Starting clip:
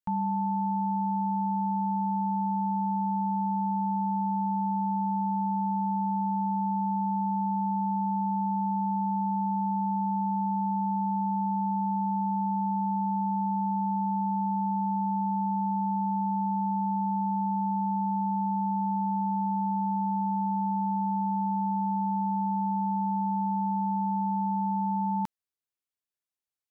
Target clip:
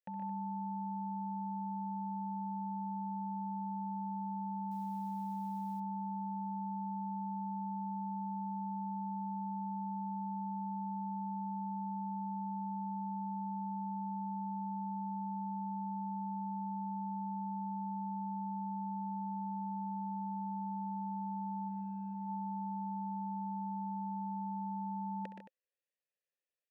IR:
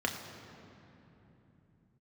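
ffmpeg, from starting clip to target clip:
-filter_complex "[0:a]asplit=3[a][b][c];[a]bandpass=f=530:t=q:w=8,volume=0dB[d];[b]bandpass=f=1.84k:t=q:w=8,volume=-6dB[e];[c]bandpass=f=2.48k:t=q:w=8,volume=-9dB[f];[d][e][f]amix=inputs=3:normalize=0,asplit=3[g][h][i];[g]afade=t=out:st=21.68:d=0.02[j];[h]adynamicsmooth=sensitivity=1.5:basefreq=830,afade=t=in:st=21.68:d=0.02,afade=t=out:st=22.13:d=0.02[k];[i]afade=t=in:st=22.13:d=0.02[l];[j][k][l]amix=inputs=3:normalize=0,asplit=2[m][n];[n]aecho=0:1:67|122|125|149|220:0.211|0.398|0.299|0.355|0.211[o];[m][o]amix=inputs=2:normalize=0,asettb=1/sr,asplit=3[p][q][r];[p]atrim=end=4.714[s];[q]atrim=start=4.71:end=5.8,asetpts=PTS-STARTPTS,afade=t=in:d=0.004:c=qsin,afade=t=out:st=1.086:d=0.004:c=qsin,acrusher=bits=8:mode=log:mix=0:aa=0.000001[t];[r]atrim=start=5.796[u];[s][t]acrossfade=d=0.004:c1=hsin:c2=qsin[v];[v][u]acrossfade=d=0.004:c1=qsin:c2=hsin,volume=9.5dB"

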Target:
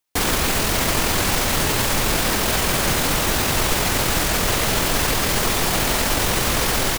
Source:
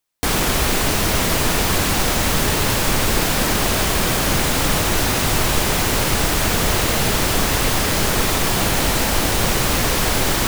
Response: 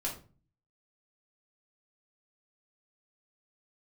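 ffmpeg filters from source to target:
-af "lowshelf=f=380:g=-3,atempo=1.5"

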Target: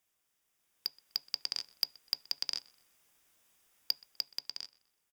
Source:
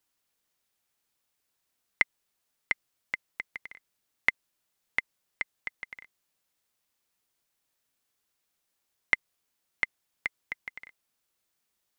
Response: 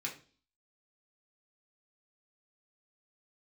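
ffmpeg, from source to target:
-filter_complex "[0:a]asoftclip=type=tanh:threshold=-20dB,alimiter=level_in=5dB:limit=-24dB:level=0:latency=1:release=181,volume=-5dB,bandreject=f=60:t=h:w=6,bandreject=f=120:t=h:w=6,bandreject=f=180:t=h:w=6,bandreject=f=240:t=h:w=6,bandreject=f=300:t=h:w=6,bandreject=f=360:t=h:w=6,bandreject=f=420:t=h:w=6,asetrate=103194,aresample=44100,asplit=2[a][b];[1:a]atrim=start_sample=2205[c];[b][c]afir=irnorm=-1:irlink=0,volume=-18.5dB[d];[a][d]amix=inputs=2:normalize=0,dynaudnorm=f=110:g=17:m=10dB,bandreject=f=4.2k:w=5.6,asplit=2[e][f];[f]adelay=125,lowpass=f=3.9k:p=1,volume=-22.5dB,asplit=2[g][h];[h]adelay=125,lowpass=f=3.9k:p=1,volume=0.49,asplit=2[i][j];[j]adelay=125,lowpass=f=3.9k:p=1,volume=0.49[k];[e][g][i][k]amix=inputs=4:normalize=0,volume=3dB"

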